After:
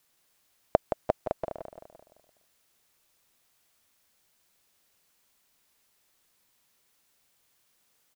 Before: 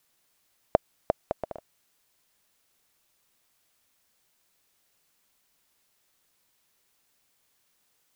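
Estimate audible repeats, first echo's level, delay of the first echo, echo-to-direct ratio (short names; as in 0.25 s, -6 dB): 5, -8.5 dB, 0.171 s, -7.5 dB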